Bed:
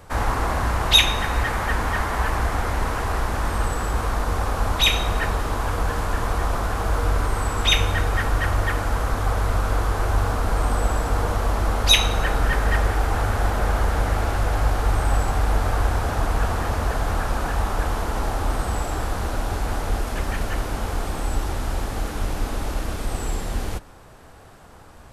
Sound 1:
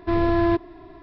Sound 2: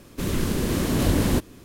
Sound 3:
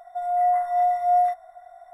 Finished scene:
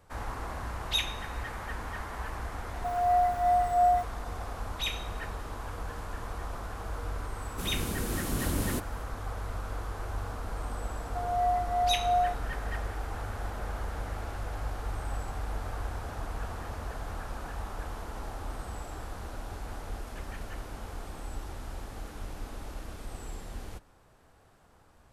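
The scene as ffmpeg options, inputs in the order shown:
-filter_complex "[3:a]asplit=2[s0][s1];[0:a]volume=0.188[s2];[s0]acrusher=bits=7:mix=0:aa=0.5[s3];[2:a]equalizer=f=11000:w=0.65:g=9.5[s4];[s3]atrim=end=1.93,asetpts=PTS-STARTPTS,volume=0.631,afade=t=in:d=0.004:c=hsin,afade=t=out:st=1.926:d=0.004:c=hsin,adelay=2690[s5];[s4]atrim=end=1.64,asetpts=PTS-STARTPTS,volume=0.282,afade=t=in:d=0.004:c=hsin,afade=t=out:st=1.636:d=0.004:c=hsin,adelay=7400[s6];[s1]atrim=end=1.93,asetpts=PTS-STARTPTS,volume=0.447,afade=t=in:d=0.004:c=hsin,afade=t=out:st=1.926:d=0.004:c=hsin,adelay=11000[s7];[s2][s5][s6][s7]amix=inputs=4:normalize=0"

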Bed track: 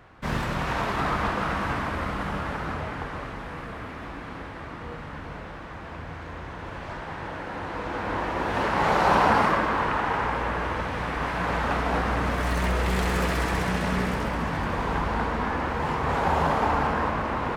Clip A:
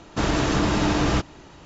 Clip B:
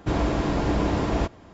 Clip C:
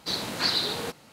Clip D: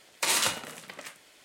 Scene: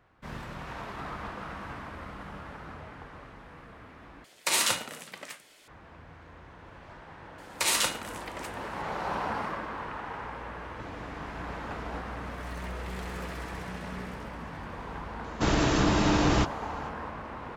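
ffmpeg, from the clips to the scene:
-filter_complex "[4:a]asplit=2[s0][s1];[0:a]volume=0.237[s2];[2:a]acompressor=threshold=0.0501:ratio=6:attack=3.2:release=140:knee=1:detection=peak[s3];[s2]asplit=2[s4][s5];[s4]atrim=end=4.244[s6];[s0]atrim=end=1.44[s7];[s5]atrim=start=5.676[s8];[s1]atrim=end=1.44,asetpts=PTS-STARTPTS,volume=0.944,afade=t=in:d=0.004:c=hsin,afade=t=out:st=1.436:d=0.004:c=hsin,adelay=325458S[s9];[s3]atrim=end=1.53,asetpts=PTS-STARTPTS,volume=0.2,afade=t=in:d=0.004:c=hsin,afade=t=out:st=1.526:d=0.004:c=hsin,adelay=10730[s10];[1:a]atrim=end=1.65,asetpts=PTS-STARTPTS,volume=0.75,afade=t=in:d=0.004:c=hsin,afade=t=out:st=1.646:d=0.004:c=hsin,adelay=672084S[s11];[s6][s7]acrossfade=d=0.004:c1=hsin:c2=hsin[s12];[s12][s8]acrossfade=d=0.004:c1=hsin:c2=hsin[s13];[s13][s9][s10][s11]amix=inputs=4:normalize=0"

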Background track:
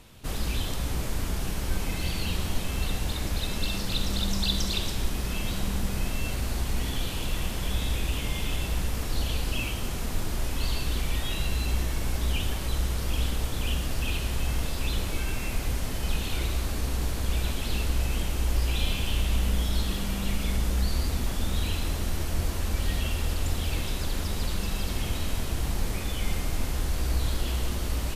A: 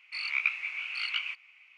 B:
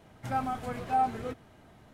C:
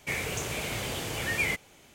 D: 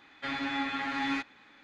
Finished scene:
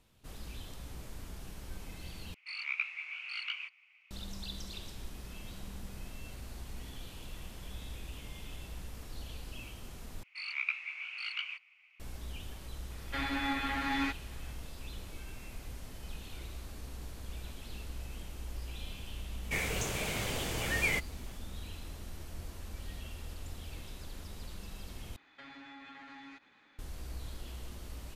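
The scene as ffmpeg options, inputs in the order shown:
-filter_complex "[1:a]asplit=2[s0][s1];[4:a]asplit=2[s2][s3];[0:a]volume=0.158[s4];[s3]acompressor=threshold=0.00891:ratio=6:attack=3.2:release=140:knee=1:detection=peak[s5];[s4]asplit=4[s6][s7][s8][s9];[s6]atrim=end=2.344[s10];[s0]atrim=end=1.77,asetpts=PTS-STARTPTS,volume=0.473[s11];[s7]atrim=start=4.106:end=10.234[s12];[s1]atrim=end=1.77,asetpts=PTS-STARTPTS,volume=0.501[s13];[s8]atrim=start=11.996:end=25.164[s14];[s5]atrim=end=1.63,asetpts=PTS-STARTPTS,volume=0.447[s15];[s9]atrim=start=26.786[s16];[s2]atrim=end=1.63,asetpts=PTS-STARTPTS,volume=0.841,afade=t=in:d=0.004:c=hsin,afade=t=out:st=1.626:d=0.004:c=hsin,adelay=12900[s17];[3:a]atrim=end=1.94,asetpts=PTS-STARTPTS,volume=0.75,afade=t=in:d=0.004:c=hsin,afade=t=out:st=1.936:d=0.004:c=hsin,adelay=19440[s18];[s10][s11]acrossfade=d=0.004:c1=hsin:c2=hsin[s19];[s19][s12]acrossfade=d=0.004:c1=hsin:c2=hsin[s20];[s20][s13]acrossfade=d=0.004:c1=hsin:c2=hsin[s21];[s21][s14]acrossfade=d=0.004:c1=hsin:c2=hsin[s22];[s22][s15]acrossfade=d=0.004:c1=hsin:c2=hsin[s23];[s23][s16]acrossfade=d=0.004:c1=hsin:c2=hsin[s24];[s24][s17][s18]amix=inputs=3:normalize=0"

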